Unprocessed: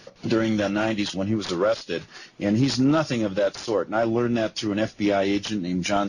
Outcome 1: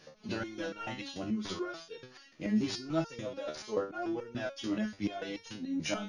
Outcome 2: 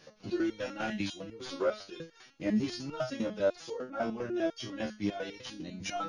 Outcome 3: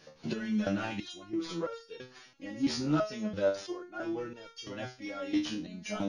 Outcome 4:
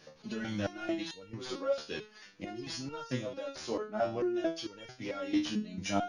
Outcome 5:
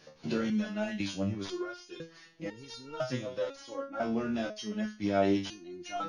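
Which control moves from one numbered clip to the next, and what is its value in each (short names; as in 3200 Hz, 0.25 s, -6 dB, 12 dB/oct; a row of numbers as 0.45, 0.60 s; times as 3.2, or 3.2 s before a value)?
stepped resonator, rate: 6.9, 10, 3, 4.5, 2 Hz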